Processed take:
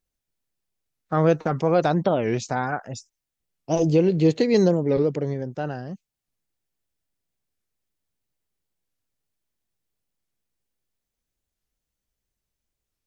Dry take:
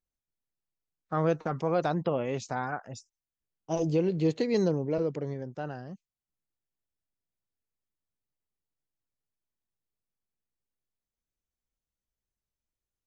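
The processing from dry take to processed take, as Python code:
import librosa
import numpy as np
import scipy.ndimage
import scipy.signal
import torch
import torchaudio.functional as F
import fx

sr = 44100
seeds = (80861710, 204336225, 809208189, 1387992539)

y = fx.peak_eq(x, sr, hz=1100.0, db=-3.0, octaves=0.77)
y = fx.record_warp(y, sr, rpm=45.0, depth_cents=250.0)
y = y * librosa.db_to_amplitude(8.0)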